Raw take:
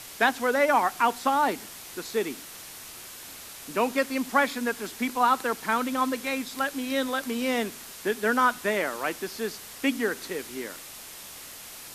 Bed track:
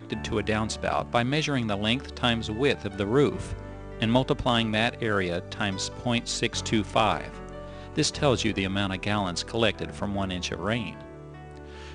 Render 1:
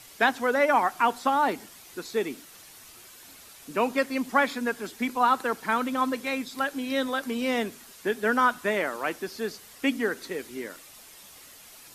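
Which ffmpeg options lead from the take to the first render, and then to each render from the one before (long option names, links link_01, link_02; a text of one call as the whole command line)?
ffmpeg -i in.wav -af "afftdn=noise_reduction=8:noise_floor=-43" out.wav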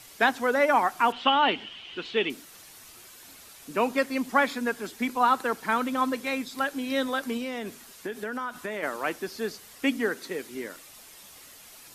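ffmpeg -i in.wav -filter_complex "[0:a]asettb=1/sr,asplit=3[link_01][link_02][link_03];[link_01]atrim=end=1.124[link_04];[link_02]atrim=start=1.12:end=2.3,asetpts=PTS-STARTPTS,afade=type=in:duration=0.004:curve=qsin,afade=type=out:start_time=1.176:duration=0.004:curve=qsin,lowpass=frequency=3000:width_type=q:width=12[link_05];[link_03]atrim=start=2.296[link_06];[link_04][link_05]acrossfade=duration=0.004:curve1=hsin:curve2=qsin[link_07];[link_07][link_06]acrossfade=duration=0.004:curve1=qsin:curve2=hsin,asplit=3[link_08][link_09][link_10];[link_08]afade=type=out:start_time=7.37:duration=0.02[link_11];[link_09]acompressor=threshold=-29dB:ratio=6:attack=3.2:release=140:knee=1:detection=peak,afade=type=in:start_time=7.37:duration=0.02,afade=type=out:start_time=8.82:duration=0.02[link_12];[link_10]afade=type=in:start_time=8.82:duration=0.02[link_13];[link_11][link_12][link_13]amix=inputs=3:normalize=0,asettb=1/sr,asplit=3[link_14][link_15][link_16];[link_14]atrim=end=10.064[link_17];[link_15]atrim=start=10.06:end=10.55,asetpts=PTS-STARTPTS,afade=type=in:duration=0.004:curve=qsin,afade=type=out:start_time=0.486:duration=0.004:curve=qsin,highpass=99[link_18];[link_16]atrim=start=10.546[link_19];[link_17][link_18]acrossfade=duration=0.004:curve1=hsin:curve2=qsin[link_20];[link_20][link_19]acrossfade=duration=0.004:curve1=qsin:curve2=hsin" out.wav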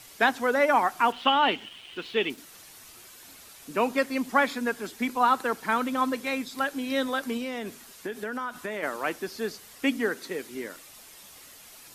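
ffmpeg -i in.wav -filter_complex "[0:a]asettb=1/sr,asplit=3[link_01][link_02][link_03];[link_01]atrim=end=1.054[link_04];[link_02]atrim=start=1.05:end=2.38,asetpts=PTS-STARTPTS,afade=type=in:duration=0.004:curve=qsin,afade=type=out:start_time=1.326:duration=0.004:curve=qsin,aeval=exprs='sgn(val(0))*max(abs(val(0))-0.00237,0)':channel_layout=same[link_05];[link_03]atrim=start=2.376[link_06];[link_04][link_05]acrossfade=duration=0.004:curve1=hsin:curve2=qsin[link_07];[link_07][link_06]acrossfade=duration=0.004:curve1=qsin:curve2=hsin" out.wav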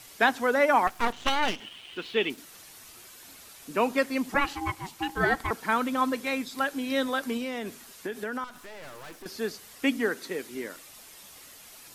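ffmpeg -i in.wav -filter_complex "[0:a]asettb=1/sr,asplit=3[link_01][link_02][link_03];[link_01]atrim=end=0.874[link_04];[link_02]atrim=start=0.87:end=1.6,asetpts=PTS-STARTPTS,afade=type=in:duration=0.004:curve=qsin,afade=type=out:start_time=0.726:duration=0.004:curve=qsin,aeval=exprs='max(val(0),0)':channel_layout=same[link_05];[link_03]atrim=start=1.596[link_06];[link_04][link_05]acrossfade=duration=0.004:curve1=hsin:curve2=qsin[link_07];[link_07][link_06]acrossfade=duration=0.004:curve1=qsin:curve2=hsin,asettb=1/sr,asplit=3[link_08][link_09][link_10];[link_08]atrim=end=4.344[link_11];[link_09]atrim=start=4.34:end=5.51,asetpts=PTS-STARTPTS,afade=type=in:duration=0.004:curve=qsin,afade=type=out:start_time=1.166:duration=0.004:curve=qsin,aeval=exprs='val(0)*sin(2*PI*560*n/s)':channel_layout=same[link_12];[link_10]atrim=start=5.506[link_13];[link_11][link_12]acrossfade=duration=0.004:curve1=hsin:curve2=qsin[link_14];[link_14][link_13]acrossfade=duration=0.004:curve1=qsin:curve2=hsin,asettb=1/sr,asplit=3[link_15][link_16][link_17];[link_15]atrim=end=8.444[link_18];[link_16]atrim=start=8.44:end=9.26,asetpts=PTS-STARTPTS,afade=type=in:duration=0.004:curve=qsin,afade=type=out:start_time=0.816:duration=0.004:curve=qsin,aeval=exprs='(tanh(126*val(0)+0.75)-tanh(0.75))/126':channel_layout=same[link_19];[link_17]atrim=start=9.256[link_20];[link_18][link_19]acrossfade=duration=0.004:curve1=hsin:curve2=qsin[link_21];[link_21][link_20]acrossfade=duration=0.004:curve1=qsin:curve2=hsin" out.wav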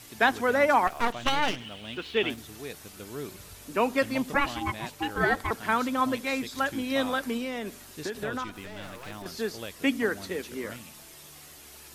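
ffmpeg -i in.wav -i bed.wav -filter_complex "[1:a]volume=-16dB[link_01];[0:a][link_01]amix=inputs=2:normalize=0" out.wav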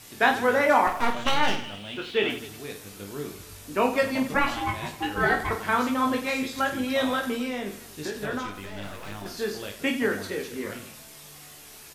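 ffmpeg -i in.wav -af "aecho=1:1:20|50|95|162.5|263.8:0.631|0.398|0.251|0.158|0.1" out.wav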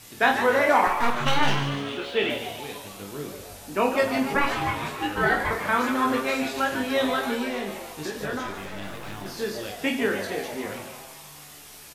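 ffmpeg -i in.wav -filter_complex "[0:a]asplit=2[link_01][link_02];[link_02]adelay=26,volume=-11dB[link_03];[link_01][link_03]amix=inputs=2:normalize=0,asplit=8[link_04][link_05][link_06][link_07][link_08][link_09][link_10][link_11];[link_05]adelay=146,afreqshift=140,volume=-9.5dB[link_12];[link_06]adelay=292,afreqshift=280,volume=-13.9dB[link_13];[link_07]adelay=438,afreqshift=420,volume=-18.4dB[link_14];[link_08]adelay=584,afreqshift=560,volume=-22.8dB[link_15];[link_09]adelay=730,afreqshift=700,volume=-27.2dB[link_16];[link_10]adelay=876,afreqshift=840,volume=-31.7dB[link_17];[link_11]adelay=1022,afreqshift=980,volume=-36.1dB[link_18];[link_04][link_12][link_13][link_14][link_15][link_16][link_17][link_18]amix=inputs=8:normalize=0" out.wav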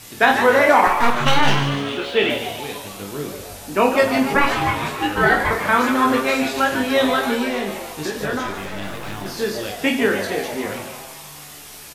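ffmpeg -i in.wav -af "volume=6.5dB,alimiter=limit=-2dB:level=0:latency=1" out.wav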